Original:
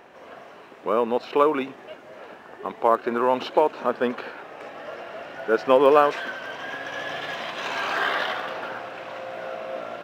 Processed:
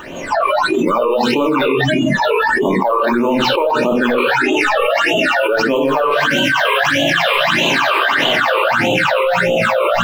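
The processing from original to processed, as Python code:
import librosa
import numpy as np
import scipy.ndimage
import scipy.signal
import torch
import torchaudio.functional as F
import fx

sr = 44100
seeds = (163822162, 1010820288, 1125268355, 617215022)

y = fx.law_mismatch(x, sr, coded='mu')
y = fx.room_shoebox(y, sr, seeds[0], volume_m3=650.0, walls='furnished', distance_m=2.6)
y = fx.phaser_stages(y, sr, stages=8, low_hz=210.0, high_hz=1600.0, hz=1.6, feedback_pct=50)
y = fx.noise_reduce_blind(y, sr, reduce_db=22)
y = fx.env_flatten(y, sr, amount_pct=100)
y = F.gain(torch.from_numpy(y), -3.5).numpy()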